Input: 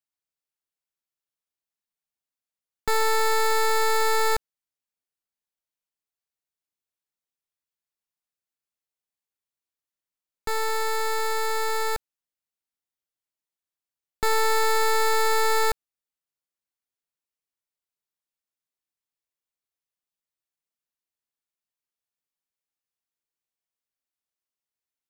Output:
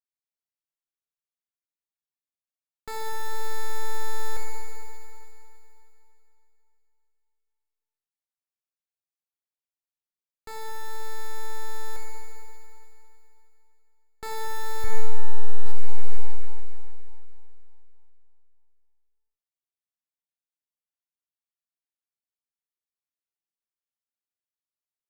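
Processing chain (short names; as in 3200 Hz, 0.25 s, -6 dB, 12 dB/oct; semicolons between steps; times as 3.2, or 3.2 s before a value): 14.84–15.66 tilt -3.5 dB/oct; Schroeder reverb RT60 3.1 s, combs from 27 ms, DRR -0.5 dB; maximiser -8.5 dB; gain -4 dB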